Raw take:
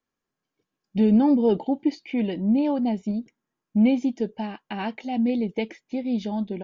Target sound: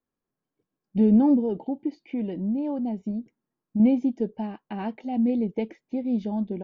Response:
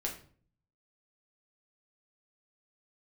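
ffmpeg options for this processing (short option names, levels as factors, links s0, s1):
-filter_complex "[0:a]tiltshelf=f=1400:g=7,asettb=1/sr,asplit=3[s0][s1][s2];[s0]atrim=end=1.394[s3];[s1]atrim=start=1.39:end=3.8,asetpts=PTS-STARTPTS,afade=t=in:d=0.004:c=qsin,afade=t=out:st=2.406:d=0.004:c=qsin,acompressor=threshold=0.0794:ratio=2[s4];[s2]atrim=start=3.796[s5];[s3][s4]acrossfade=d=0.004:c1=hsin:c2=qsin[s6];[s6][s5]acrossfade=d=0.004:c1=qsin:c2=hsin,volume=0.473"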